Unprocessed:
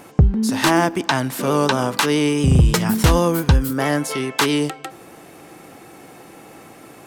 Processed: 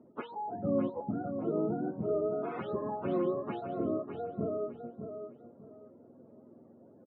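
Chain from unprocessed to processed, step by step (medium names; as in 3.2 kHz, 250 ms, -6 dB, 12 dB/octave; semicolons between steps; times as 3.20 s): spectrum inverted on a logarithmic axis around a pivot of 430 Hz; ladder band-pass 370 Hz, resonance 25%; feedback delay 605 ms, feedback 25%, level -8 dB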